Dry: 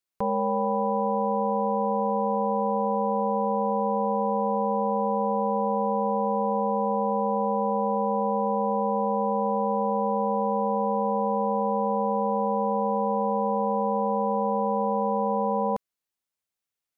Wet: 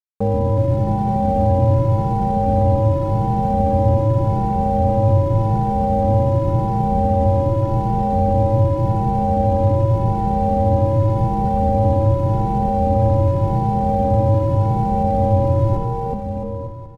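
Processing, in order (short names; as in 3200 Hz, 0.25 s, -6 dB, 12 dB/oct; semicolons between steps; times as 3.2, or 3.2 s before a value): octaver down 1 oct, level 0 dB; tilt shelf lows +8.5 dB, about 840 Hz; de-hum 69.71 Hz, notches 3; in parallel at -1.5 dB: limiter -20 dBFS, peak gain reduction 9 dB; on the sum: LPF 1100 Hz 12 dB/oct; low shelf 100 Hz +3.5 dB; notch 660 Hz, Q 12; crossover distortion -42 dBFS; on a send: bouncing-ball echo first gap 0.37 s, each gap 0.8×, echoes 5; on the sum: endless flanger 2.2 ms +0.87 Hz; gain +2 dB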